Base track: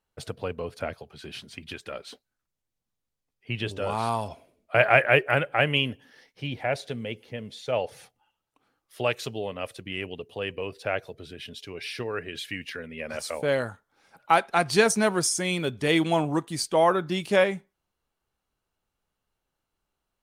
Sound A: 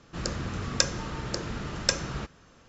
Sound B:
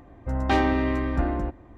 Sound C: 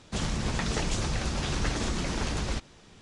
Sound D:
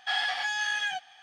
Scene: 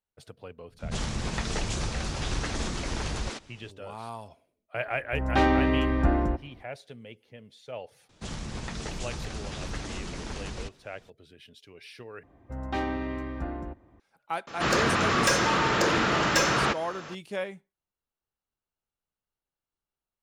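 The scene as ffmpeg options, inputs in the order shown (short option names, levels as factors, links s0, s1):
-filter_complex "[3:a]asplit=2[s0][s1];[2:a]asplit=2[s2][s3];[0:a]volume=0.251[s4];[s0]acrossover=split=220[s5][s6];[s6]adelay=90[s7];[s5][s7]amix=inputs=2:normalize=0[s8];[s2]dynaudnorm=f=110:g=7:m=3.76[s9];[s3]highpass=49[s10];[1:a]asplit=2[s11][s12];[s12]highpass=f=720:p=1,volume=50.1,asoftclip=type=tanh:threshold=0.891[s13];[s11][s13]amix=inputs=2:normalize=0,lowpass=f=3100:p=1,volume=0.501[s14];[s4]asplit=2[s15][s16];[s15]atrim=end=12.234[s17];[s10]atrim=end=1.77,asetpts=PTS-STARTPTS,volume=0.376[s18];[s16]atrim=start=13.996[s19];[s8]atrim=end=3.01,asetpts=PTS-STARTPTS,volume=0.891,afade=t=in:d=0.004:c=hsin,afade=t=out:st=3.006:d=0.004:c=hsin,adelay=700[s20];[s9]atrim=end=1.77,asetpts=PTS-STARTPTS,volume=0.398,afade=t=in:d=0.004:c=hsin,afade=t=out:st=1.766:d=0.004:c=hsin,adelay=4860[s21];[s1]atrim=end=3.01,asetpts=PTS-STARTPTS,volume=0.473,afade=t=in:d=0.004:c=hsin,afade=t=out:st=3.006:d=0.004:c=hsin,adelay=8090[s22];[s14]atrim=end=2.68,asetpts=PTS-STARTPTS,volume=0.355,afade=t=in:d=0.004:c=hsin,afade=t=out:st=2.676:d=0.004:c=hsin,adelay=14470[s23];[s17][s18]acrossfade=d=0.004:c1=hsin:c2=hsin[s24];[s24][s19]acrossfade=d=0.004:c1=hsin:c2=hsin[s25];[s25][s20][s21][s22][s23]amix=inputs=5:normalize=0"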